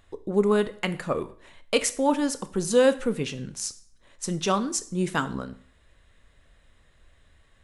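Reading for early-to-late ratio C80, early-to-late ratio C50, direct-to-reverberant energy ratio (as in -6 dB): 19.5 dB, 16.5 dB, 11.5 dB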